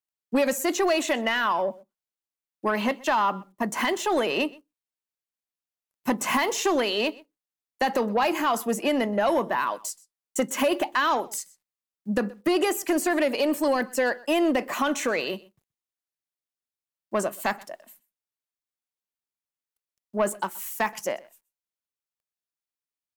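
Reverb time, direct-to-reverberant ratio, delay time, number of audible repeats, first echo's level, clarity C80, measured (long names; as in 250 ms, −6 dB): no reverb audible, no reverb audible, 126 ms, 1, −23.0 dB, no reverb audible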